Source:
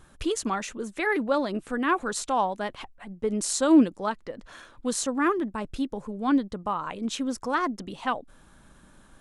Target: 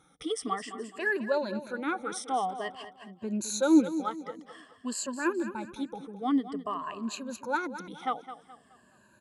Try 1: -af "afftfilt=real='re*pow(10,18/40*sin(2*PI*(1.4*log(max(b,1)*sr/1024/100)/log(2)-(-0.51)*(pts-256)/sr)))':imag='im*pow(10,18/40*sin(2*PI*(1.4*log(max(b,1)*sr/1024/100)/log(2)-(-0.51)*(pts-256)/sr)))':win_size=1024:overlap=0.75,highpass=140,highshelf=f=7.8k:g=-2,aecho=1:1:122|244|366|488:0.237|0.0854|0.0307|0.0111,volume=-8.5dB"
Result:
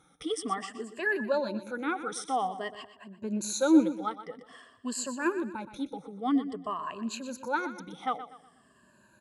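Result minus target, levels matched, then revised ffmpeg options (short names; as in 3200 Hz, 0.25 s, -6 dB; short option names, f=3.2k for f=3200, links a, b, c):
echo 90 ms early
-af "afftfilt=real='re*pow(10,18/40*sin(2*PI*(1.4*log(max(b,1)*sr/1024/100)/log(2)-(-0.51)*(pts-256)/sr)))':imag='im*pow(10,18/40*sin(2*PI*(1.4*log(max(b,1)*sr/1024/100)/log(2)-(-0.51)*(pts-256)/sr)))':win_size=1024:overlap=0.75,highpass=140,highshelf=f=7.8k:g=-2,aecho=1:1:212|424|636|848:0.237|0.0854|0.0307|0.0111,volume=-8.5dB"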